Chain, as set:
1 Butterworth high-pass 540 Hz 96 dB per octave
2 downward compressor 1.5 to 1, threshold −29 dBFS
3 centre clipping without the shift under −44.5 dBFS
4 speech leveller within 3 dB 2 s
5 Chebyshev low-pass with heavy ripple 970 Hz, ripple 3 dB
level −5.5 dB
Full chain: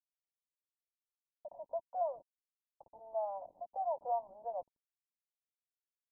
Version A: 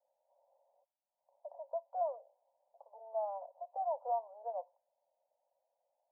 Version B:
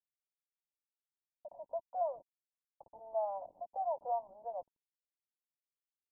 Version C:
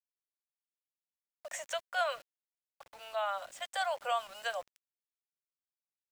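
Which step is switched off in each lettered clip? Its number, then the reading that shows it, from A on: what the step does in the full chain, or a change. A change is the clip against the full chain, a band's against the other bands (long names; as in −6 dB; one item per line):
3, distortion level −23 dB
4, change in momentary loudness spread +1 LU
5, change in momentary loudness spread −4 LU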